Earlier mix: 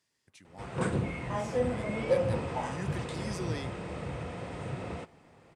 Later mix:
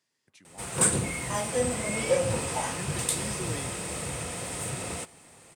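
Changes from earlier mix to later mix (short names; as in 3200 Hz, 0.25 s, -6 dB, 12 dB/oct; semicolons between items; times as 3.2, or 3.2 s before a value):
speech: add HPF 130 Hz; background: remove tape spacing loss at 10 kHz 32 dB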